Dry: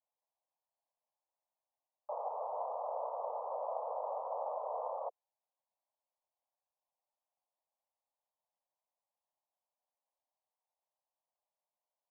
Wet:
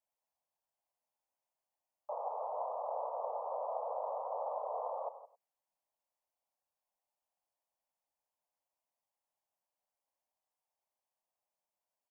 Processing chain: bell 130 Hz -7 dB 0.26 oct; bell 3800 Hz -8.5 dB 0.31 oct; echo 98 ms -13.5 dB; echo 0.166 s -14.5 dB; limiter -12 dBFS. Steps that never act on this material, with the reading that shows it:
bell 130 Hz: input band starts at 400 Hz; bell 3800 Hz: input band ends at 1300 Hz; limiter -12 dBFS: input peak -25.5 dBFS

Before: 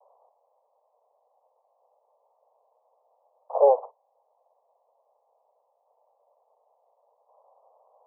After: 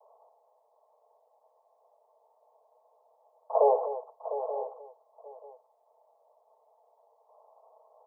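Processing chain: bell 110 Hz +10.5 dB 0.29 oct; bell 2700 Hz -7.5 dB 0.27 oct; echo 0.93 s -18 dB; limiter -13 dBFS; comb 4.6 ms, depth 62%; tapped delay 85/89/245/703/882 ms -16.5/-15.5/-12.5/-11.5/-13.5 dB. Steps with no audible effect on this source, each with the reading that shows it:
bell 110 Hz: input band starts at 380 Hz; bell 2700 Hz: input band ends at 1100 Hz

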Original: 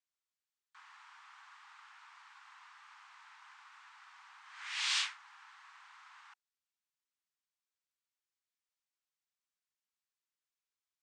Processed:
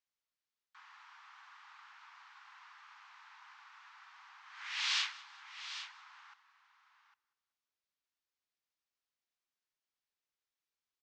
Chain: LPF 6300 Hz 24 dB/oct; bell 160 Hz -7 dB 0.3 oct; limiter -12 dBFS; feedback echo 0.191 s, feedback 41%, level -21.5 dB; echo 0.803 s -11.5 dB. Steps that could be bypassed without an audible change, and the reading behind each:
bell 160 Hz: input band starts at 680 Hz; limiter -12 dBFS: input peak -20.5 dBFS

